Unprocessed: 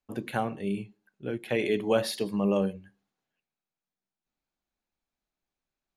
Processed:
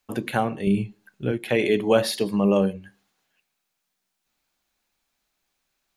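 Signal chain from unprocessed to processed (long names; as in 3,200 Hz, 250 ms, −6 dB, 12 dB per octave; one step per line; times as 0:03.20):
0:00.67–0:01.32: low-shelf EQ 150 Hz +12 dB
one half of a high-frequency compander encoder only
level +6 dB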